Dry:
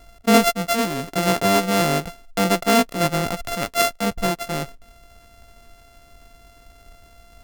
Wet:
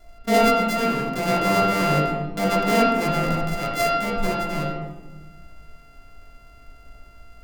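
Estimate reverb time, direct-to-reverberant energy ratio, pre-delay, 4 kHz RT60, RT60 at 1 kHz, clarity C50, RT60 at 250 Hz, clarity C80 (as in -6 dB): 1.2 s, -6.0 dB, 3 ms, 0.80 s, 1.2 s, 1.5 dB, 1.8 s, 4.0 dB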